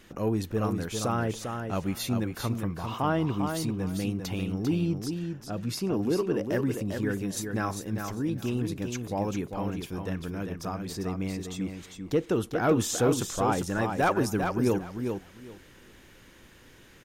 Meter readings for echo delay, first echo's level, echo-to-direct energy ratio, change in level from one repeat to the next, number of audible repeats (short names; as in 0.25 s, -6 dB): 0.398 s, -6.0 dB, -6.0 dB, -15.0 dB, 2